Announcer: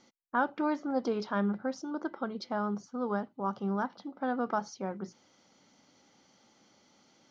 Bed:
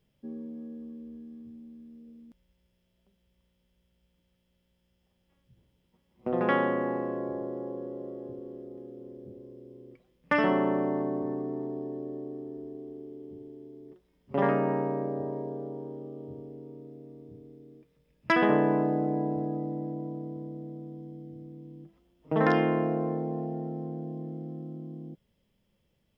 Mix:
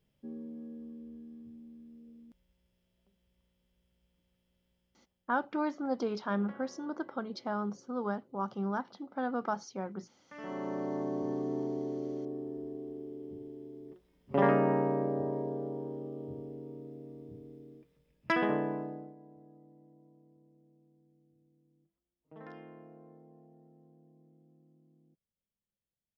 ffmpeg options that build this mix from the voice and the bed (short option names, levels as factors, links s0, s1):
-filter_complex "[0:a]adelay=4950,volume=0.794[s0];[1:a]volume=15,afade=t=out:st=4.69:d=0.87:silence=0.0668344,afade=t=in:st=10.34:d=1.23:silence=0.0446684,afade=t=out:st=17.58:d=1.57:silence=0.0530884[s1];[s0][s1]amix=inputs=2:normalize=0"